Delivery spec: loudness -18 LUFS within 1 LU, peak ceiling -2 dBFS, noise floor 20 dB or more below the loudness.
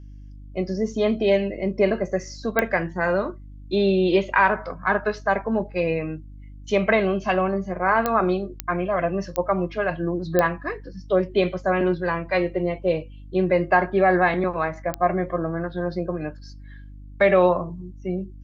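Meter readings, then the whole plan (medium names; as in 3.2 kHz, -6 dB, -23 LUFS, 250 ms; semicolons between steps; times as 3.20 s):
clicks found 6; hum 50 Hz; highest harmonic 300 Hz; hum level -38 dBFS; loudness -23.0 LUFS; peak level -5.0 dBFS; loudness target -18.0 LUFS
-> de-click; de-hum 50 Hz, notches 6; trim +5 dB; peak limiter -2 dBFS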